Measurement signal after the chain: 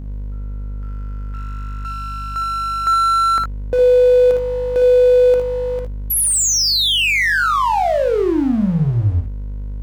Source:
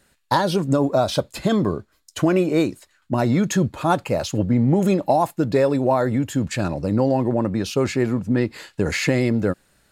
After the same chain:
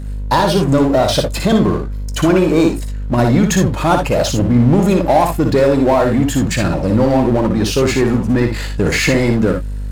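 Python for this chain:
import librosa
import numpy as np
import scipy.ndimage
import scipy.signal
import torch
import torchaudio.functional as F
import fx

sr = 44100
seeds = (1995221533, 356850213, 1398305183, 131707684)

y = fx.add_hum(x, sr, base_hz=50, snr_db=16)
y = fx.power_curve(y, sr, exponent=0.7)
y = fx.room_early_taps(y, sr, ms=(58, 76), db=(-5.5, -11.5))
y = y * 10.0 ** (2.0 / 20.0)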